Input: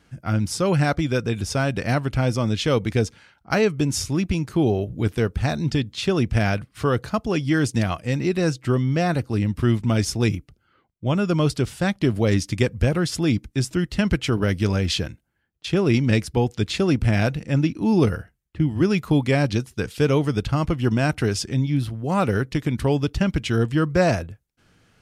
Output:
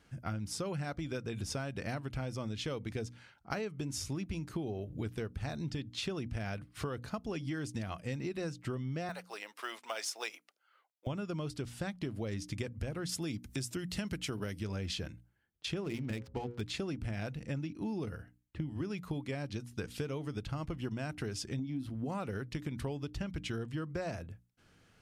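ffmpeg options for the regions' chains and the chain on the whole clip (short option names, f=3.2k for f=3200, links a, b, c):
-filter_complex "[0:a]asettb=1/sr,asplit=3[a][b][c];[a]atrim=end=9.094[d];[b]atrim=start=9.09:end=11.07,asetpts=PTS-STARTPTS,afade=t=in:d=0.004:c=qsin,afade=t=out:st=1.976:d=0.004:c=qsin,highpass=f=600:w=0.5412,highpass=f=600:w=1.3066,acrusher=bits=6:mode=log:mix=0:aa=0.000001[e];[c]atrim=start=11.066[f];[d][e]acrossfade=d=0.004:c1=hsin:c2=qsin[g];[g][f]acrossfade=d=0.004:c1=qsin:c2=hsin,asettb=1/sr,asplit=3[h][i][j];[h]atrim=end=13.094[k];[i]atrim=start=13.09:end=14.6,asetpts=PTS-STARTPTS,afade=t=in:d=0.004:c=qsin,afade=t=out:st=1.506:d=0.004:c=qsin,highpass=75,highshelf=f=5.7k:g=11,acompressor=mode=upward:threshold=-25dB:ratio=2.5:attack=3.2:release=140:knee=2.83:detection=peak[l];[j]atrim=start=14.596[m];[k][l]acrossfade=d=0.004:c1=hsin:c2=qsin[n];[n][m]acrossfade=d=0.004:c1=qsin:c2=hsin,asettb=1/sr,asplit=3[o][p][q];[o]atrim=end=15.844[r];[p]atrim=start=15.84:end=16.61,asetpts=PTS-STARTPTS,afade=t=in:d=0.004:c=qsin,afade=t=out:st=0.766:d=0.004:c=qsin,bandreject=f=60:t=h:w=6,bandreject=f=120:t=h:w=6,bandreject=f=180:t=h:w=6,bandreject=f=240:t=h:w=6,bandreject=f=300:t=h:w=6,bandreject=f=360:t=h:w=6,bandreject=f=420:t=h:w=6,bandreject=f=480:t=h:w=6,bandreject=f=540:t=h:w=6,bandreject=f=600:t=h:w=6,adynamicsmooth=sensitivity=6.5:basefreq=550[s];[q]atrim=start=16.606[t];[r][s]acrossfade=d=0.004:c1=hsin:c2=qsin[u];[u][t]acrossfade=d=0.004:c1=qsin:c2=hsin,asettb=1/sr,asplit=3[v][w][x];[v]atrim=end=21.594[y];[w]atrim=start=21.59:end=22.06,asetpts=PTS-STARTPTS,afade=t=in:d=0.004:c=qsin,afade=t=out:st=0.466:d=0.004:c=qsin,equalizer=f=260:w=4.3:g=15,acompressor=threshold=-20dB:ratio=2:attack=3.2:release=140:knee=1:detection=peak[z];[x]atrim=start=22.056[aa];[y][z]acrossfade=d=0.004:c1=hsin:c2=qsin[ab];[ab][aa]acrossfade=d=0.004:c1=qsin:c2=hsin,bandreject=f=60:t=h:w=6,bandreject=f=120:t=h:w=6,bandreject=f=180:t=h:w=6,bandreject=f=240:t=h:w=6,bandreject=f=300:t=h:w=6,acompressor=threshold=-28dB:ratio=12,volume=-6dB"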